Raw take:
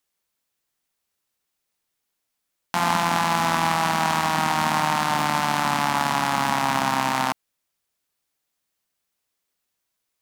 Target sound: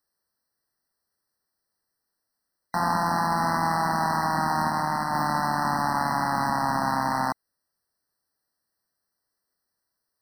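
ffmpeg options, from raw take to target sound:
-filter_complex "[0:a]asoftclip=type=tanh:threshold=-15dB,asplit=3[a][b][c];[a]afade=t=out:st=4.69:d=0.02[d];[b]agate=range=-33dB:threshold=-21dB:ratio=3:detection=peak,afade=t=in:st=4.69:d=0.02,afade=t=out:st=5.13:d=0.02[e];[c]afade=t=in:st=5.13:d=0.02[f];[d][e][f]amix=inputs=3:normalize=0,afftfilt=real='re*eq(mod(floor(b*sr/1024/2000),2),0)':imag='im*eq(mod(floor(b*sr/1024/2000),2),0)':win_size=1024:overlap=0.75"

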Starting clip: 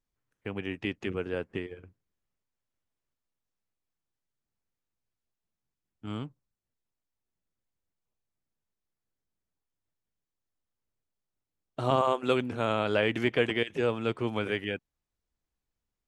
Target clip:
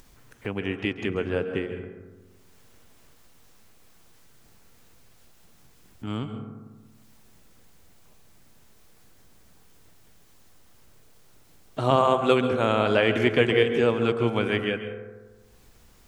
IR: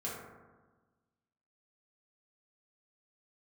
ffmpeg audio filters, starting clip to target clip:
-filter_complex "[0:a]acompressor=mode=upward:threshold=-38dB:ratio=2.5,asplit=2[a][b];[1:a]atrim=start_sample=2205,adelay=134[c];[b][c]afir=irnorm=-1:irlink=0,volume=-10dB[d];[a][d]amix=inputs=2:normalize=0,volume=5dB"

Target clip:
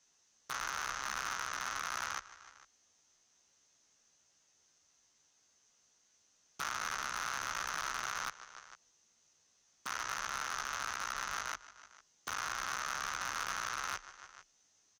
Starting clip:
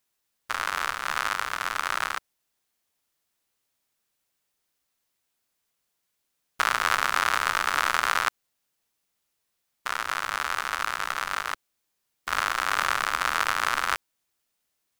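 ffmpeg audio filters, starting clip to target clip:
-filter_complex "[0:a]lowpass=f=6.2k:t=q:w=9.8,aemphasis=mode=reproduction:type=cd,bandreject=f=2.3k:w=21,asplit=2[a][b];[b]adelay=15,volume=-4dB[c];[a][c]amix=inputs=2:normalize=0,aecho=1:1:151|302|453:0.075|0.0367|0.018,afreqshift=25,alimiter=limit=-10.5dB:level=0:latency=1:release=347,asoftclip=type=tanh:threshold=-16.5dB,acompressor=threshold=-50dB:ratio=2,aeval=exprs='0.0237*(abs(mod(val(0)/0.0237+3,4)-2)-1)':c=same,volume=4dB"

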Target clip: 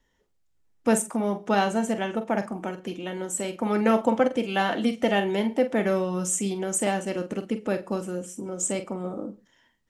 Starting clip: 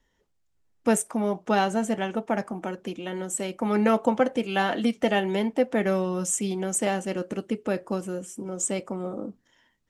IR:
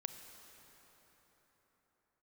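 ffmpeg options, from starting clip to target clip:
-filter_complex "[0:a]asplit=2[a][b];[1:a]atrim=start_sample=2205,atrim=end_sample=4410,adelay=45[c];[b][c]afir=irnorm=-1:irlink=0,volume=-7dB[d];[a][d]amix=inputs=2:normalize=0"

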